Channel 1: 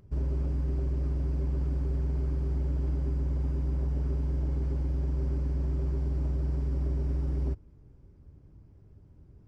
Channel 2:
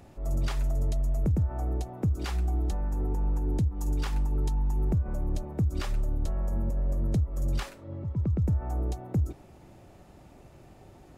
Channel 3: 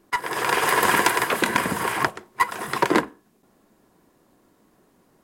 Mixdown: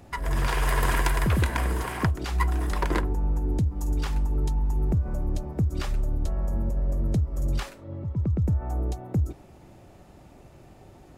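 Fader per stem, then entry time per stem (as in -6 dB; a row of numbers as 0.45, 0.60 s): -11.0, +2.0, -9.0 dB; 0.00, 0.00, 0.00 s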